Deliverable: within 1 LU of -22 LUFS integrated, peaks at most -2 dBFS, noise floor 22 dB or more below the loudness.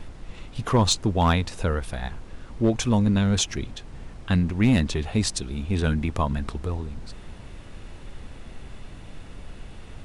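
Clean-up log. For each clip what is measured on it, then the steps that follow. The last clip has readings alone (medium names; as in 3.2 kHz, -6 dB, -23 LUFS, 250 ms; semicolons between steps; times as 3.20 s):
clipped samples 0.2%; clipping level -12.5 dBFS; noise floor -42 dBFS; noise floor target -47 dBFS; loudness -24.5 LUFS; peak level -12.5 dBFS; loudness target -22.0 LUFS
-> clip repair -12.5 dBFS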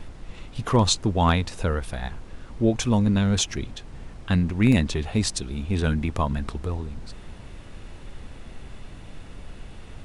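clipped samples 0.0%; noise floor -42 dBFS; noise floor target -46 dBFS
-> noise print and reduce 6 dB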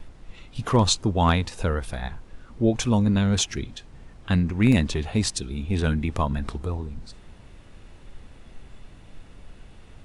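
noise floor -48 dBFS; loudness -24.0 LUFS; peak level -6.5 dBFS; loudness target -22.0 LUFS
-> trim +2 dB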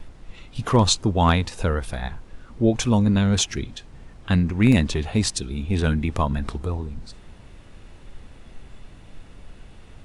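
loudness -22.0 LUFS; peak level -4.5 dBFS; noise floor -46 dBFS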